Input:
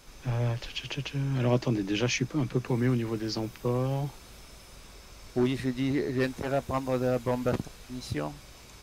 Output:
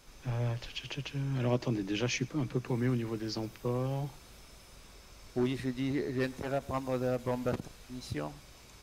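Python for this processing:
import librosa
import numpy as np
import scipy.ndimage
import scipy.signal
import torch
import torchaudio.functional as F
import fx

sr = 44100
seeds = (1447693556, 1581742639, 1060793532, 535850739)

p1 = x + fx.echo_single(x, sr, ms=110, db=-23.5, dry=0)
p2 = fx.end_taper(p1, sr, db_per_s=480.0)
y = p2 * librosa.db_to_amplitude(-4.5)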